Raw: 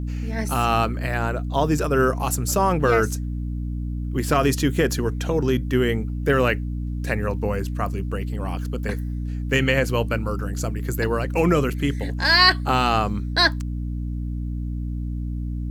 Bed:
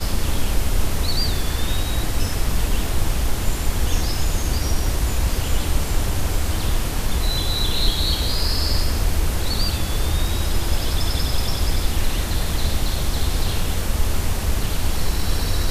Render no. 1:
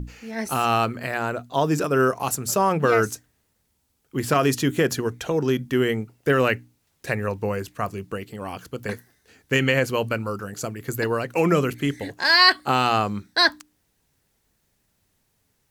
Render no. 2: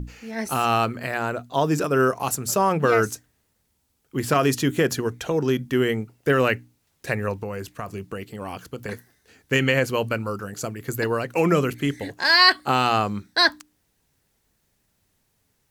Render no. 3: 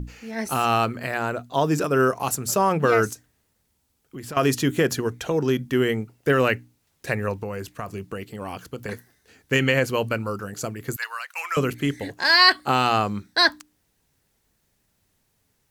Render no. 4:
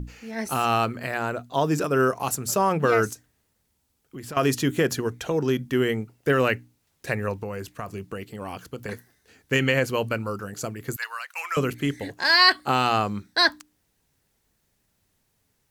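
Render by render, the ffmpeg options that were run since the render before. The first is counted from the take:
-af "bandreject=f=60:t=h:w=6,bandreject=f=120:t=h:w=6,bandreject=f=180:t=h:w=6,bandreject=f=240:t=h:w=6,bandreject=f=300:t=h:w=6"
-filter_complex "[0:a]asplit=3[a][b][c];[a]afade=t=out:st=7.36:d=0.02[d];[b]acompressor=threshold=-26dB:ratio=6:attack=3.2:release=140:knee=1:detection=peak,afade=t=in:st=7.36:d=0.02,afade=t=out:st=8.91:d=0.02[e];[c]afade=t=in:st=8.91:d=0.02[f];[d][e][f]amix=inputs=3:normalize=0"
-filter_complex "[0:a]asettb=1/sr,asplit=3[a][b][c];[a]atrim=end=3.134[d];[b]atrim=start=3.13:end=4.37,asetpts=PTS-STARTPTS,afade=t=in:d=0.004:c=qsin,afade=t=out:st=1.236:d=0.004:c=qsin,acompressor=threshold=-36dB:ratio=3:attack=3.2:release=140:knee=1:detection=peak[e];[c]atrim=start=4.366[f];[d][e]acrossfade=d=0.004:c1=hsin:c2=qsin[g];[g][f]acrossfade=d=0.004:c1=qsin:c2=hsin,asettb=1/sr,asplit=3[h][i][j];[h]atrim=end=10.964[k];[i]atrim=start=10.96:end=11.57,asetpts=PTS-STARTPTS,afade=t=in:d=0.004:c=qsin,afade=t=out:st=0.606:d=0.004:c=qsin,highpass=f=1.1k:w=0.5412,highpass=f=1.1k:w=1.3066[l];[j]atrim=start=11.566[m];[k][l]acrossfade=d=0.004:c1=hsin:c2=qsin[n];[n][m]acrossfade=d=0.004:c1=qsin:c2=hsin"
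-af "volume=-1.5dB"

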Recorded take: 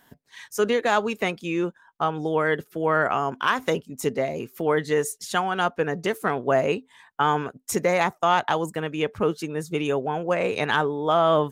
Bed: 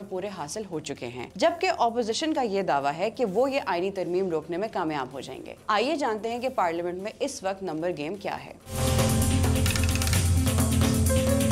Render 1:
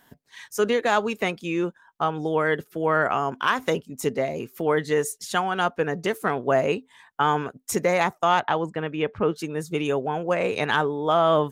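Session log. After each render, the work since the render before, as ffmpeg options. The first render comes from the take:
-filter_complex "[0:a]asettb=1/sr,asplit=3[a][b][c];[a]atrim=end=8.404[d];[b]atrim=start=8.4:end=9.36,asetpts=PTS-STARTPTS,afade=t=in:d=0.004:c=qsin,afade=t=out:st=0.956:d=0.004:c=qsin,lowpass=3.2k[e];[c]atrim=start=9.356[f];[d][e]acrossfade=d=0.004:c1=hsin:c2=qsin[g];[g][f]acrossfade=d=0.004:c1=qsin:c2=hsin"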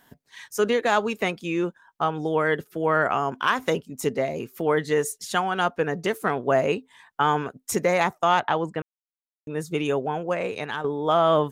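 -filter_complex "[0:a]asplit=4[a][b][c][d];[a]atrim=end=8.82,asetpts=PTS-STARTPTS,afade=t=out:st=8.816:d=0.004:c=hsin[e];[b]atrim=start=8.82:end=9.47,asetpts=PTS-STARTPTS,volume=0[f];[c]atrim=start=9.47:end=10.84,asetpts=PTS-STARTPTS,afade=t=in:d=0.004:c=hsin,afade=t=out:st=0.57:d=0.8:silence=0.298538[g];[d]atrim=start=10.84,asetpts=PTS-STARTPTS,afade=t=in:d=0.004:c=hsin:silence=0.298538[h];[e][f][g][h]concat=n=4:v=0:a=1"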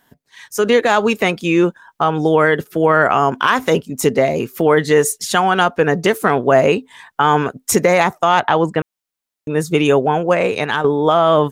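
-af "alimiter=limit=-14.5dB:level=0:latency=1:release=69,dynaudnorm=f=370:g=3:m=13dB"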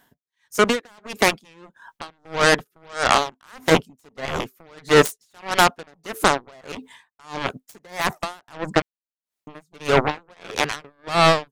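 -af "aeval=exprs='0.75*(cos(1*acos(clip(val(0)/0.75,-1,1)))-cos(1*PI/2))+0.211*(cos(7*acos(clip(val(0)/0.75,-1,1)))-cos(7*PI/2))':c=same,aeval=exprs='val(0)*pow(10,-37*(0.5-0.5*cos(2*PI*1.6*n/s))/20)':c=same"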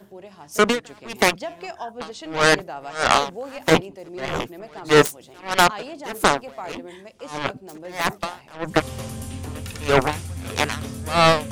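-filter_complex "[1:a]volume=-9.5dB[a];[0:a][a]amix=inputs=2:normalize=0"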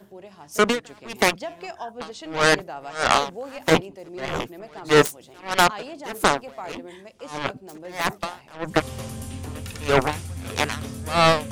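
-af "volume=-1.5dB"

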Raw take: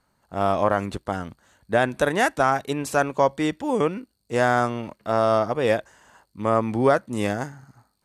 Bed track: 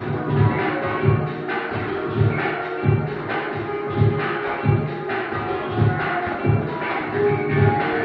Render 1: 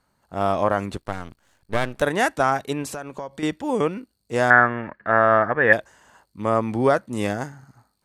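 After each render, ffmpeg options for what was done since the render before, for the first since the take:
-filter_complex "[0:a]asettb=1/sr,asplit=3[a][b][c];[a]atrim=end=1.004[d];[b]atrim=start=1:end=2.02,asetpts=PTS-STARTPTS,afade=t=in:d=0.004:c=qsin,afade=t=out:st=1.016:d=0.004:c=qsin,aeval=exprs='max(val(0),0)':c=same[e];[c]atrim=start=2.016[f];[d][e]acrossfade=d=0.004:c1=hsin:c2=qsin[g];[g][f]acrossfade=d=0.004:c1=qsin:c2=hsin,asettb=1/sr,asplit=3[h][i][j];[h]atrim=end=2.844[k];[i]atrim=start=2.84:end=3.43,asetpts=PTS-STARTPTS,afade=t=in:d=0.004:c=qsin,afade=t=out:st=0.586:d=0.004:c=qsin,acompressor=threshold=-29dB:ratio=6:attack=3.2:release=140:knee=1:detection=peak[l];[j]atrim=start=3.426[m];[k][l]acrossfade=d=0.004:c1=hsin:c2=qsin[n];[n][m]acrossfade=d=0.004:c1=qsin:c2=hsin,asettb=1/sr,asplit=3[o][p][q];[o]atrim=end=4.504[r];[p]atrim=start=4.5:end=5.73,asetpts=PTS-STARTPTS,afade=t=in:d=0.004:c=qsin,afade=t=out:st=1.226:d=0.004:c=qsin,lowpass=f=1.7k:t=q:w=12[s];[q]atrim=start=5.726[t];[r][s]acrossfade=d=0.004:c1=hsin:c2=qsin[u];[u][t]acrossfade=d=0.004:c1=qsin:c2=hsin"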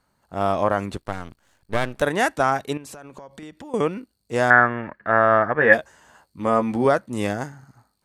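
-filter_complex "[0:a]asettb=1/sr,asplit=3[a][b][c];[a]atrim=end=2.774[d];[b]atrim=start=2.77:end=3.74,asetpts=PTS-STARTPTS,afade=t=in:d=0.004:c=qsin,afade=t=out:st=0.966:d=0.004:c=qsin,acompressor=threshold=-35dB:ratio=16:attack=3.2:release=140:knee=1:detection=peak[e];[c]atrim=start=3.736[f];[d][e]acrossfade=d=0.004:c1=hsin:c2=qsin[g];[g][f]acrossfade=d=0.004:c1=qsin:c2=hsin,asettb=1/sr,asplit=3[h][i][j];[h]atrim=end=5.574[k];[i]atrim=start=5.57:end=6.85,asetpts=PTS-STARTPTS,afade=t=in:d=0.004:c=qsin,afade=t=out:st=1.276:d=0.004:c=qsin,asplit=2[l][m];[m]adelay=13,volume=-5.5dB[n];[l][n]amix=inputs=2:normalize=0,atrim=end_sample=56448[o];[j]atrim=start=6.846[p];[k][o]acrossfade=d=0.004:c1=hsin:c2=qsin[q];[q][p]acrossfade=d=0.004:c1=qsin:c2=hsin"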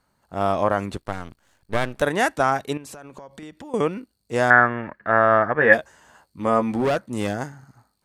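-filter_complex "[0:a]asplit=3[a][b][c];[a]afade=t=out:st=6.73:d=0.02[d];[b]volume=17.5dB,asoftclip=hard,volume=-17.5dB,afade=t=in:st=6.73:d=0.02,afade=t=out:st=7.33:d=0.02[e];[c]afade=t=in:st=7.33:d=0.02[f];[d][e][f]amix=inputs=3:normalize=0"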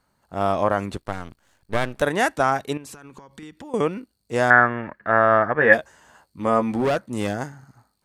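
-filter_complex "[0:a]asettb=1/sr,asplit=3[a][b][c];[a]atrim=end=2.904[d];[b]atrim=start=2.9:end=3.59,asetpts=PTS-STARTPTS,afade=t=in:d=0.004:c=qsin,afade=t=out:st=0.686:d=0.004:c=qsin,equalizer=f=620:w=3.3:g=-15[e];[c]atrim=start=3.586[f];[d][e]acrossfade=d=0.004:c1=hsin:c2=qsin[g];[g][f]acrossfade=d=0.004:c1=qsin:c2=hsin"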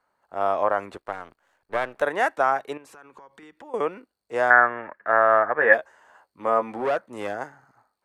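-filter_complex "[0:a]acrossover=split=390 2300:gain=0.126 1 0.251[a][b][c];[a][b][c]amix=inputs=3:normalize=0"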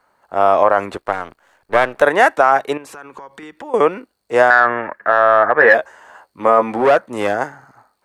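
-filter_complex "[0:a]asplit=2[a][b];[b]acontrast=33,volume=-1dB[c];[a][c]amix=inputs=2:normalize=0,alimiter=level_in=3.5dB:limit=-1dB:release=50:level=0:latency=1"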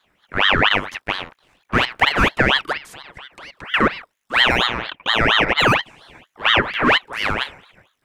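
-filter_complex "[0:a]acrossover=split=150|1300[a][b][c];[c]asoftclip=type=tanh:threshold=-22.5dB[d];[a][b][d]amix=inputs=3:normalize=0,aeval=exprs='val(0)*sin(2*PI*1600*n/s+1600*0.6/4.3*sin(2*PI*4.3*n/s))':c=same"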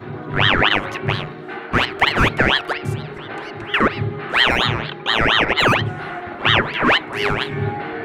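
-filter_complex "[1:a]volume=-6dB[a];[0:a][a]amix=inputs=2:normalize=0"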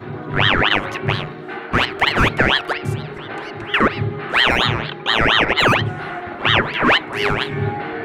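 -af "volume=1dB,alimiter=limit=-3dB:level=0:latency=1"

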